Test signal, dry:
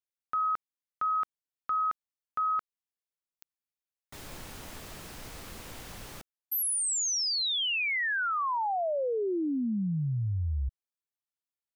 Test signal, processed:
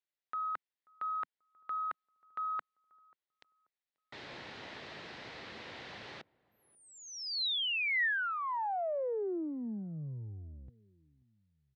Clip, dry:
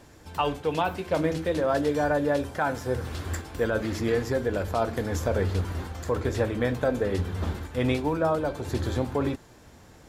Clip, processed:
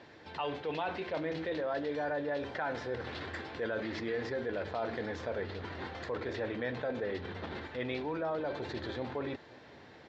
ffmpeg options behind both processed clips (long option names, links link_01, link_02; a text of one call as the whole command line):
ffmpeg -i in.wav -filter_complex "[0:a]areverse,acompressor=threshold=-34dB:ratio=4:attack=4.8:release=30:knee=1:detection=peak,areverse,highpass=170,equalizer=frequency=180:width_type=q:width=4:gain=-5,equalizer=frequency=270:width_type=q:width=4:gain=-4,equalizer=frequency=1200:width_type=q:width=4:gain=-3,equalizer=frequency=1900:width_type=q:width=4:gain=5,equalizer=frequency=4000:width_type=q:width=4:gain=3,lowpass=frequency=4300:width=0.5412,lowpass=frequency=4300:width=1.3066,asplit=2[link_01][link_02];[link_02]adelay=536,lowpass=frequency=810:poles=1,volume=-23.5dB,asplit=2[link_03][link_04];[link_04]adelay=536,lowpass=frequency=810:poles=1,volume=0.45,asplit=2[link_05][link_06];[link_06]adelay=536,lowpass=frequency=810:poles=1,volume=0.45[link_07];[link_01][link_03][link_05][link_07]amix=inputs=4:normalize=0" out.wav